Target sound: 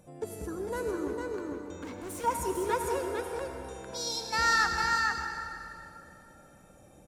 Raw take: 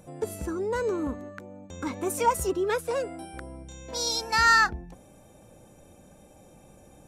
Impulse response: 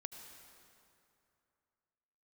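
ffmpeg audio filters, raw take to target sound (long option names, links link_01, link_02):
-filter_complex "[0:a]asettb=1/sr,asplit=3[link_01][link_02][link_03];[link_01]atrim=end=1.084[link_04];[link_02]atrim=start=1.08:end=2.24,asetpts=PTS-STARTPTS,afade=type=in:duration=0.004:curve=qsin,afade=type=out:start_time=1.156:duration=0.004:curve=qsin,asoftclip=type=hard:threshold=-33dB[link_05];[link_03]atrim=start=2.236[link_06];[link_04][link_05]acrossfade=duration=0.004:curve1=hsin:curve2=qsin[link_07];[link_07][link_06]acrossfade=duration=0.004:curve1=qsin:curve2=hsin,aecho=1:1:452:0.668[link_08];[1:a]atrim=start_sample=2205,asetrate=42336,aresample=44100[link_09];[link_08][link_09]afir=irnorm=-1:irlink=0,volume=-1.5dB"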